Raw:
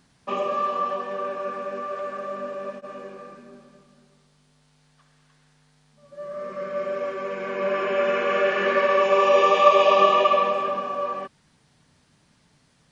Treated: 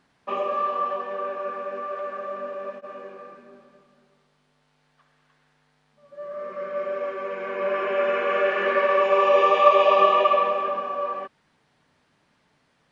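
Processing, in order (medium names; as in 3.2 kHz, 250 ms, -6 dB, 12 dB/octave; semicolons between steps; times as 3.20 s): tone controls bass -10 dB, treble -12 dB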